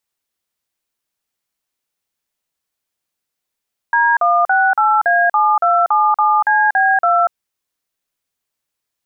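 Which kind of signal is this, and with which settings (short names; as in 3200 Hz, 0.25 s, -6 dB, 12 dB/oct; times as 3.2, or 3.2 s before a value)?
DTMF "D168A7277CB2", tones 0.239 s, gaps 43 ms, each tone -13 dBFS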